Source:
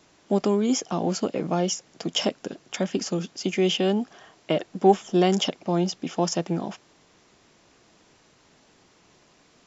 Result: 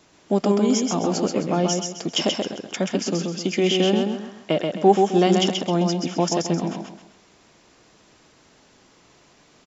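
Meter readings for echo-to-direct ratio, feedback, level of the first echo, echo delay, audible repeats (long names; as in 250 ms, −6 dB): −3.5 dB, 35%, −4.0 dB, 131 ms, 4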